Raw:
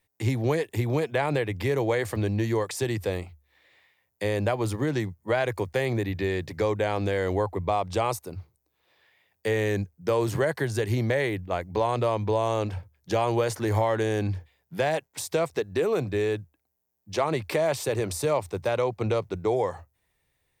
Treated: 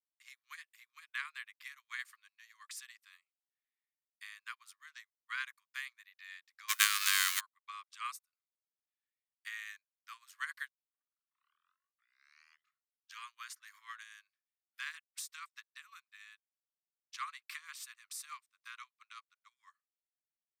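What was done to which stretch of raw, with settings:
0:06.68–0:07.39: spectral envelope flattened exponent 0.3
0:10.68: tape start 2.51 s
whole clip: Butterworth high-pass 1,100 Hz 96 dB per octave; expander for the loud parts 2.5 to 1, over −52 dBFS; level +3 dB

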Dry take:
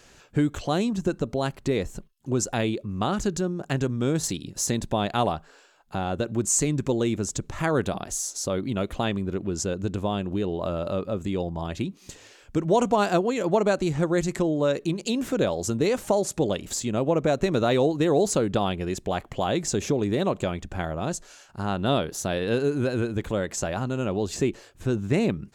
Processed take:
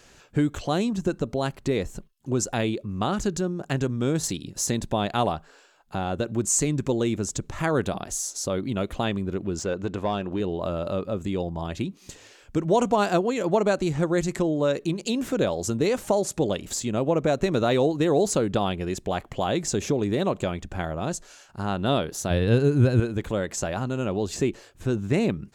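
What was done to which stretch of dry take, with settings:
0:09.59–0:10.40: mid-hump overdrive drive 12 dB, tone 1,900 Hz, clips at −14.5 dBFS
0:22.30–0:23.00: parametric band 92 Hz +14 dB 1.8 octaves

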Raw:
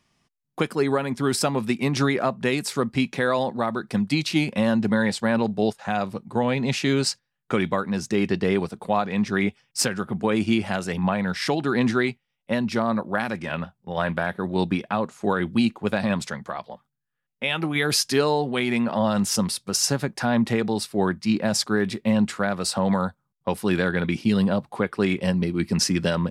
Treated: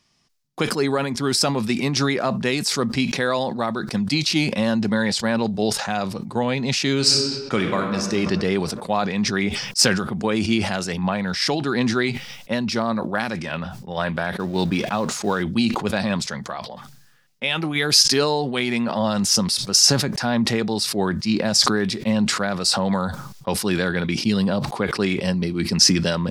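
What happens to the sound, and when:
0:06.96–0:08.03: thrown reverb, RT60 1.8 s, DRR 4 dB
0:14.39–0:15.43: mu-law and A-law mismatch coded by mu
whole clip: parametric band 5,100 Hz +9 dB 1 octave; level that may fall only so fast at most 51 dB per second

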